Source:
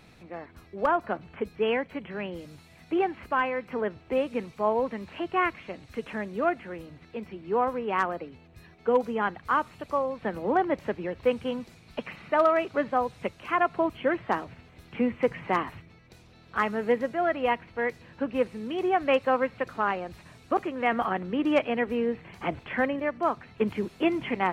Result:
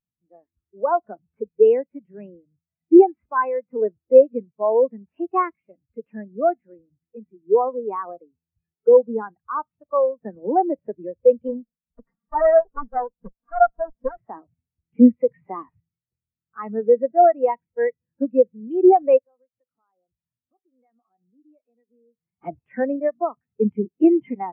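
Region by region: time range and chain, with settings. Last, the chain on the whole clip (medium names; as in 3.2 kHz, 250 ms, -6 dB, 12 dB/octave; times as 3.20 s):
11.48–14.17 s: comb filter that takes the minimum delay 4.3 ms + high-order bell 3 kHz -13.5 dB 1.1 oct
19.18–22.42 s: compression 3:1, threshold -43 dBFS + feedback comb 250 Hz, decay 0.38 s, mix 40%
whole clip: loudness maximiser +16.5 dB; spectral contrast expander 2.5:1; trim -1 dB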